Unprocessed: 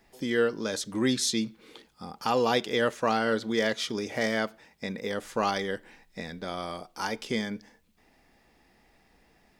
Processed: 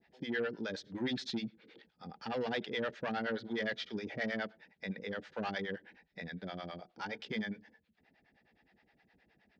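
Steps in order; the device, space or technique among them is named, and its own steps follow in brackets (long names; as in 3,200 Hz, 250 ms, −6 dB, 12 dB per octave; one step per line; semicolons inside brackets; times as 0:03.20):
guitar amplifier with harmonic tremolo (two-band tremolo in antiphase 9.6 Hz, depth 100%, crossover 500 Hz; soft clipping −27 dBFS, distortion −13 dB; loudspeaker in its box 75–4,300 Hz, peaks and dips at 180 Hz +4 dB, 1,100 Hz −9 dB, 1,700 Hz +5 dB)
level −2.5 dB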